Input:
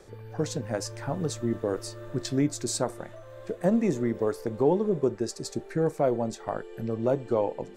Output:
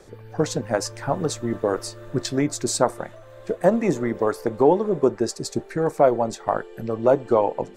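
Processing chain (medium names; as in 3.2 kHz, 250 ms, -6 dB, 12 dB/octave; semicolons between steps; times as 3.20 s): dynamic bell 1 kHz, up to +6 dB, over -40 dBFS, Q 0.72; harmonic-percussive split percussive +6 dB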